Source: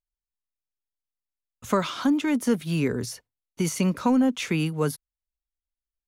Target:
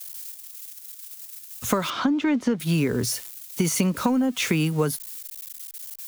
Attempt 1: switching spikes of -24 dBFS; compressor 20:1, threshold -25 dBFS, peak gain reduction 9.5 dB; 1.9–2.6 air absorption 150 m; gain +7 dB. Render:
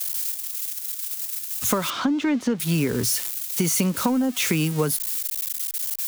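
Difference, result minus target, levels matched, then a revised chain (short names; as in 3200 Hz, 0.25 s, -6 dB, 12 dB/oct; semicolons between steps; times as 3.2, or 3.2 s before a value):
switching spikes: distortion +10 dB
switching spikes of -34.5 dBFS; compressor 20:1, threshold -25 dBFS, peak gain reduction 9.5 dB; 1.9–2.6 air absorption 150 m; gain +7 dB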